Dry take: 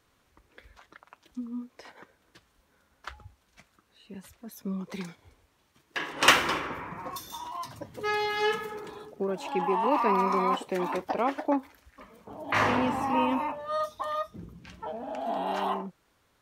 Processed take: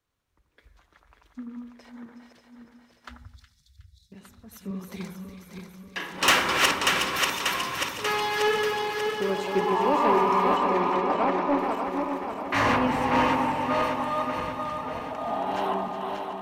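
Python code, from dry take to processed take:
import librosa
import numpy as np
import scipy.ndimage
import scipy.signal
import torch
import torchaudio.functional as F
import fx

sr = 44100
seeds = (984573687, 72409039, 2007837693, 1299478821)

y = fx.reverse_delay_fb(x, sr, ms=294, feedback_pct=78, wet_db=-4.0)
y = fx.lowpass(y, sr, hz=4600.0, slope=12, at=(10.57, 11.59))
y = 10.0 ** (-16.5 / 20.0) * np.tanh(y / 10.0 ** (-16.5 / 20.0))
y = fx.brickwall_bandstop(y, sr, low_hz=190.0, high_hz=3300.0, at=(3.17, 4.12))
y = fx.echo_split(y, sr, split_hz=1600.0, low_ms=87, high_ms=366, feedback_pct=52, wet_db=-8.5)
y = fx.band_widen(y, sr, depth_pct=40)
y = y * 10.0 ** (1.5 / 20.0)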